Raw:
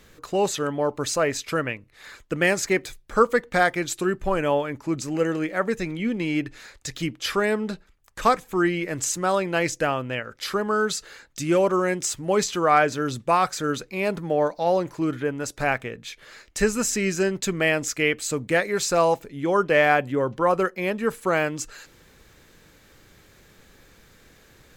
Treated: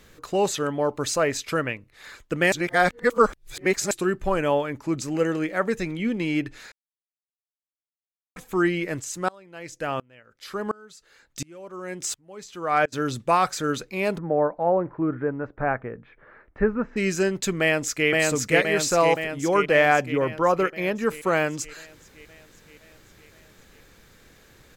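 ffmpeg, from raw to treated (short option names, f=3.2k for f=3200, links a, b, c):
-filter_complex "[0:a]asplit=3[a][b][c];[a]afade=t=out:st=8.99:d=0.02[d];[b]aeval=exprs='val(0)*pow(10,-29*if(lt(mod(-1.4*n/s,1),2*abs(-1.4)/1000),1-mod(-1.4*n/s,1)/(2*abs(-1.4)/1000),(mod(-1.4*n/s,1)-2*abs(-1.4)/1000)/(1-2*abs(-1.4)/1000))/20)':c=same,afade=t=in:st=8.99:d=0.02,afade=t=out:st=12.92:d=0.02[e];[c]afade=t=in:st=12.92:d=0.02[f];[d][e][f]amix=inputs=3:normalize=0,asplit=3[g][h][i];[g]afade=t=out:st=14.17:d=0.02[j];[h]lowpass=f=1.6k:w=0.5412,lowpass=f=1.6k:w=1.3066,afade=t=in:st=14.17:d=0.02,afade=t=out:st=16.96:d=0.02[k];[i]afade=t=in:st=16.96:d=0.02[l];[j][k][l]amix=inputs=3:normalize=0,asplit=2[m][n];[n]afade=t=in:st=17.6:d=0.01,afade=t=out:st=18.09:d=0.01,aecho=0:1:520|1040|1560|2080|2600|3120|3640|4160|4680|5200|5720:0.891251|0.579313|0.376554|0.24476|0.159094|0.103411|0.0672172|0.0436912|0.0283992|0.0184595|0.0119987[o];[m][o]amix=inputs=2:normalize=0,asettb=1/sr,asplit=3[p][q][r];[p]atrim=end=20.064[s];[q]atrim=start=20.06:end=21.06,asetpts=PTS-STARTPTS,afade=t=in:d=0.004:c=qsin,afade=t=out:st=0.996:d=0.004:c=qsin,equalizer=f=8.5k:t=o:w=0.25:g=-13.5[t];[r]atrim=start=21.056[u];[s][t]acrossfade=d=0.004:c1=hsin:c2=qsin[v];[v][u]acrossfade=d=0.004:c1=qsin:c2=hsin,asplit=5[w][x][y][z][aa];[w]atrim=end=2.522[ab];[x]atrim=start=2.518:end=3.912,asetpts=PTS-STARTPTS,areverse[ac];[y]atrim=start=3.908:end=6.72,asetpts=PTS-STARTPTS,afade=t=out:st=2.808:d=0.004:c=hsin[ad];[z]atrim=start=6.72:end=8.36,asetpts=PTS-STARTPTS,volume=0[ae];[aa]atrim=start=8.36,asetpts=PTS-STARTPTS,afade=t=in:d=0.004:c=hsin[af];[ab][ac]acrossfade=d=0.004:c1=hsin:c2=hsin[ag];[ad][ae][af]concat=n=3:v=0:a=1[ah];[ag][ah]acrossfade=d=0.004:c1=hsin:c2=hsin"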